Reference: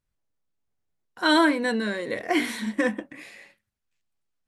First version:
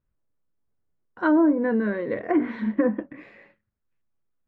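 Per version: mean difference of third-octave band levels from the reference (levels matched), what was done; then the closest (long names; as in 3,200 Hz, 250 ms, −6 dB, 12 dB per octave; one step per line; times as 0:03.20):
7.5 dB: low-pass filter 1,300 Hz 12 dB per octave
treble cut that deepens with the level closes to 600 Hz, closed at −18 dBFS
parametric band 770 Hz −5.5 dB 0.54 octaves
level +4 dB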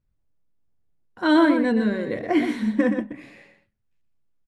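5.5 dB: low-pass filter 2,800 Hz 6 dB per octave
low-shelf EQ 410 Hz +11.5 dB
single-tap delay 122 ms −8 dB
level −2.5 dB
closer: second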